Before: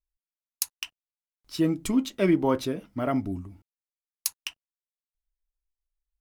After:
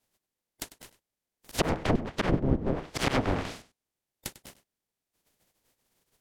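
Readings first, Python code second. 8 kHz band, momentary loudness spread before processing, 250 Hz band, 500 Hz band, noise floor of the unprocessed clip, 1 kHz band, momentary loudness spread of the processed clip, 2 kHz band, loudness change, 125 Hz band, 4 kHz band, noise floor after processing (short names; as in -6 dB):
-6.5 dB, 16 LU, -5.5 dB, -2.5 dB, under -85 dBFS, +1.0 dB, 15 LU, +3.5 dB, -2.0 dB, +3.0 dB, 0.0 dB, under -85 dBFS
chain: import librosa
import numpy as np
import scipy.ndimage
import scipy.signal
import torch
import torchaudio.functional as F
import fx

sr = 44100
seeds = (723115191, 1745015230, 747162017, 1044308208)

p1 = fx.spec_flatten(x, sr, power=0.11)
p2 = fx.sample_hold(p1, sr, seeds[0], rate_hz=1400.0, jitter_pct=0)
p3 = p1 + (p2 * 10.0 ** (-6.5 / 20.0))
p4 = fx.auto_swell(p3, sr, attack_ms=124.0)
p5 = fx.env_lowpass_down(p4, sr, base_hz=330.0, full_db=-22.0)
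p6 = p5 + fx.echo_single(p5, sr, ms=98, db=-16.5, dry=0)
p7 = fx.rider(p6, sr, range_db=10, speed_s=0.5)
y = p7 * 10.0 ** (8.0 / 20.0)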